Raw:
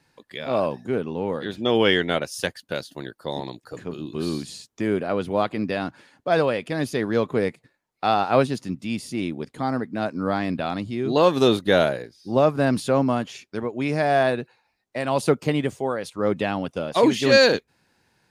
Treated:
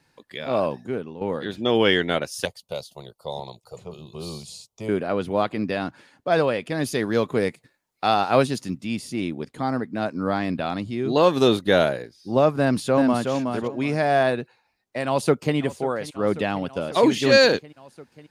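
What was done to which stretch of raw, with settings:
0.72–1.21 s: fade out linear, to -11 dB
2.45–4.89 s: static phaser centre 690 Hz, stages 4
6.84–8.78 s: treble shelf 4 kHz +7 dB
12.60–13.30 s: echo throw 370 ms, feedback 20%, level -5 dB
15.06–15.56 s: echo throw 540 ms, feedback 80%, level -16.5 dB

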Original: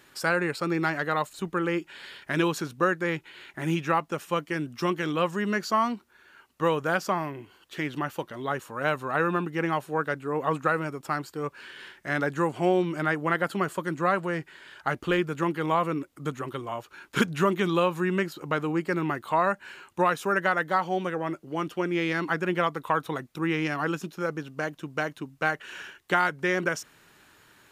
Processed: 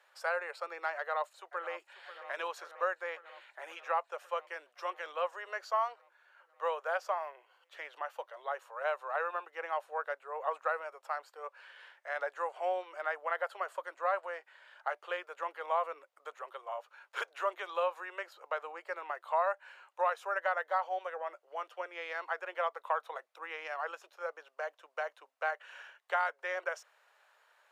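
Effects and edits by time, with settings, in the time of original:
0.97–2.01 s: echo throw 540 ms, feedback 75%, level -14 dB
whole clip: steep high-pass 540 Hz 48 dB/octave; tilt EQ -3.5 dB/octave; trim -6.5 dB

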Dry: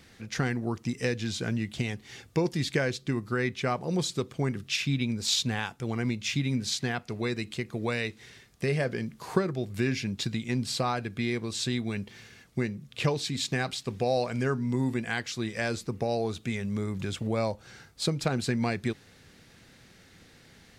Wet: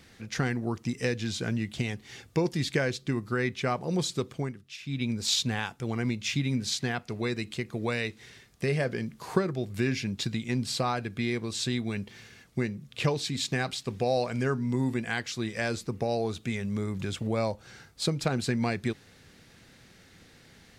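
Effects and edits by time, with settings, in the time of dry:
4.33–5.07 s: dip -14 dB, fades 0.25 s

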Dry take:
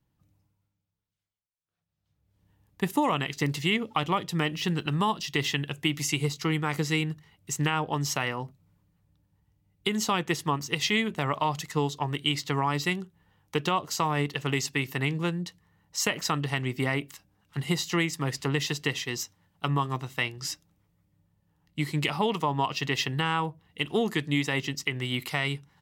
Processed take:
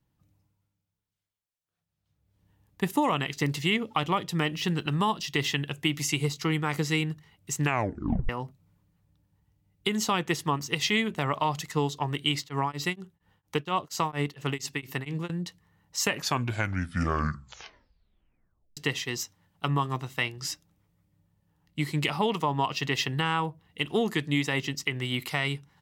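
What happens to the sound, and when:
7.63 s: tape stop 0.66 s
12.38–15.30 s: tremolo of two beating tones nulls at 4.3 Hz
16.00 s: tape stop 2.77 s

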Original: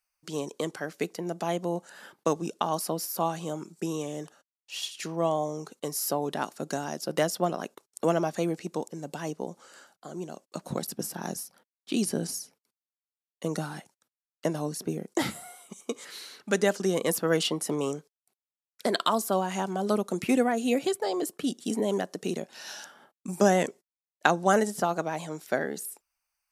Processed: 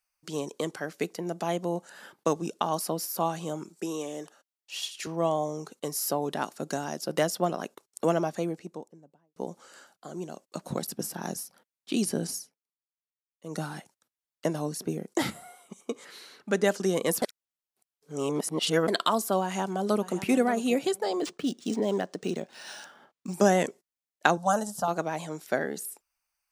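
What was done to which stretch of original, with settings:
3.69–5.07 s: high-pass 250 Hz
8.03–9.36 s: studio fade out
12.35–13.62 s: dip -22.5 dB, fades 0.20 s
15.30–16.64 s: treble shelf 2.7 kHz -7.5 dB
17.22–18.88 s: reverse
19.43–20.16 s: echo throw 580 ms, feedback 20%, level -13.5 dB
21.20–23.34 s: decimation joined by straight lines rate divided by 3×
24.37–24.88 s: static phaser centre 880 Hz, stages 4

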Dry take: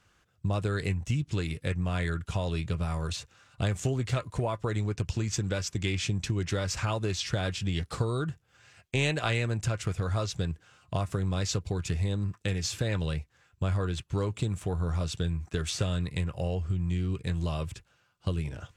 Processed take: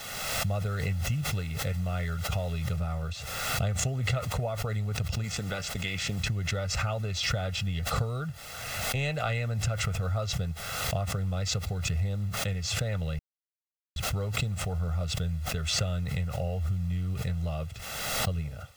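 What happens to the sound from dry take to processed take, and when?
2.76 s: noise floor step -45 dB -51 dB
5.23–6.19 s: spectral peaks clipped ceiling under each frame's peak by 14 dB
13.19–13.96 s: mute
whole clip: low-pass 3.3 kHz 6 dB/octave; comb 1.5 ms, depth 79%; swell ahead of each attack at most 31 dB/s; trim -4.5 dB

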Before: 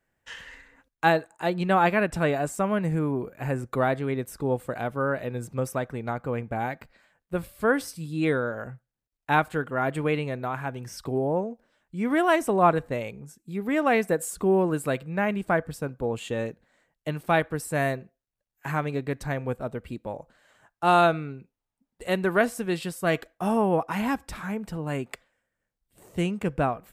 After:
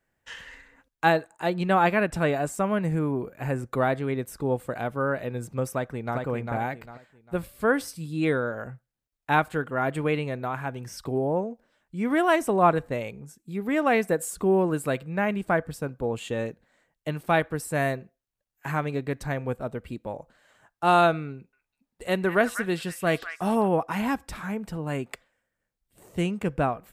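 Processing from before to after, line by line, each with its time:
5.72–6.17 s: echo throw 400 ms, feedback 30%, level -4 dB
21.33–23.68 s: repeats whose band climbs or falls 198 ms, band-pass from 1.7 kHz, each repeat 1.4 oct, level -5.5 dB

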